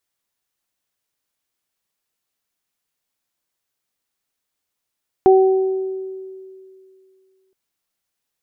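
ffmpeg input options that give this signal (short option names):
-f lavfi -i "aevalsrc='0.447*pow(10,-3*t/2.46)*sin(2*PI*380*t)+0.224*pow(10,-3*t/1.08)*sin(2*PI*760*t)':d=2.27:s=44100"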